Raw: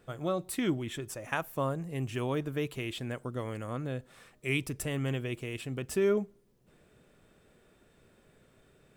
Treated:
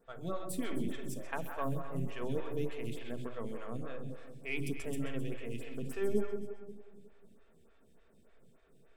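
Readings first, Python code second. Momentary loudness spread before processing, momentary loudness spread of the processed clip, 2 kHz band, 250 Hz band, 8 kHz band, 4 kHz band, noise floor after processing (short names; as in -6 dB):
8 LU, 9 LU, -7.0 dB, -4.5 dB, -7.5 dB, -9.0 dB, -63 dBFS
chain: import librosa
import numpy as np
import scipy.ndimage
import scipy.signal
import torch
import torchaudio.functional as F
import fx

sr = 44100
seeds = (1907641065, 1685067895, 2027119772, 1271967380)

p1 = np.where(x < 0.0, 10.0 ** (-3.0 / 20.0) * x, x)
p2 = fx.low_shelf(p1, sr, hz=210.0, db=4.5)
p3 = fx.vibrato(p2, sr, rate_hz=1.4, depth_cents=29.0)
p4 = fx.hum_notches(p3, sr, base_hz=50, count=8)
p5 = p4 + fx.echo_split(p4, sr, split_hz=870.0, low_ms=180, high_ms=130, feedback_pct=52, wet_db=-7.0, dry=0)
p6 = fx.room_shoebox(p5, sr, seeds[0], volume_m3=2600.0, walls='furnished', distance_m=1.6)
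p7 = fx.stagger_phaser(p6, sr, hz=3.4)
y = F.gain(torch.from_numpy(p7), -4.0).numpy()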